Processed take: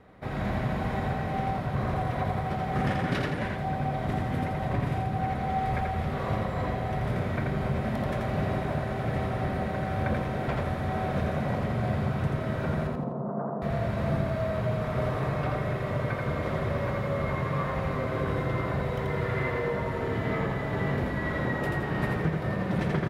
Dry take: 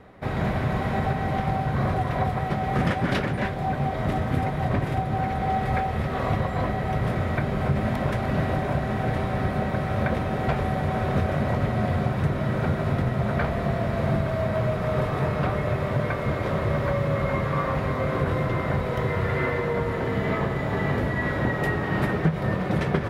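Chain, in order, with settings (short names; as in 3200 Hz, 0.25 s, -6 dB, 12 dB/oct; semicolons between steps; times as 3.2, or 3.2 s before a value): 12.87–13.62 elliptic band-pass 160–1100 Hz, stop band 40 dB; on a send: feedback echo 84 ms, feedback 38%, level -3 dB; on the sum: gain -6 dB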